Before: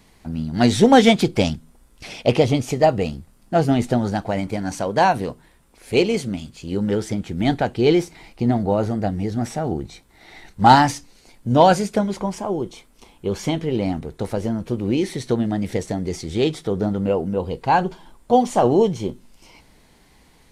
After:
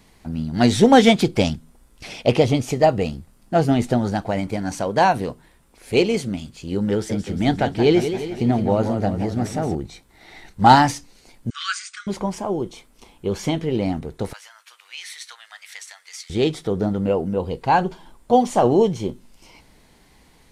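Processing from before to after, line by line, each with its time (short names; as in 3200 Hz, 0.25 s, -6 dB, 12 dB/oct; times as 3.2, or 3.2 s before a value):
6.92–9.75 warbling echo 0.175 s, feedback 58%, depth 138 cents, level -9 dB
11.5–12.07 brick-wall FIR band-pass 1100–9200 Hz
14.33–16.3 inverse Chebyshev high-pass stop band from 290 Hz, stop band 70 dB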